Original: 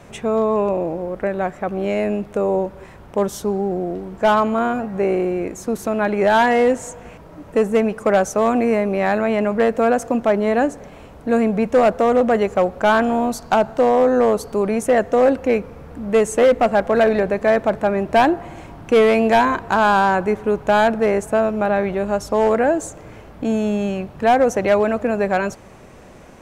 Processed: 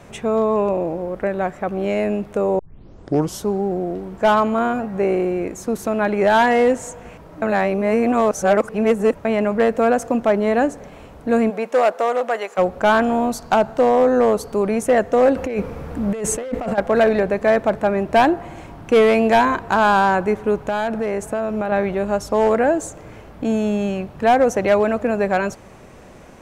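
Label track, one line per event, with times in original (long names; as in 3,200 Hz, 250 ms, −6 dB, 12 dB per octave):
2.590000	2.590000	tape start 0.80 s
7.420000	9.250000	reverse
11.490000	12.570000	high-pass filter 380 Hz → 790 Hz
15.360000	16.780000	compressor whose output falls as the input rises −23 dBFS
20.650000	21.720000	downward compressor, threshold −18 dBFS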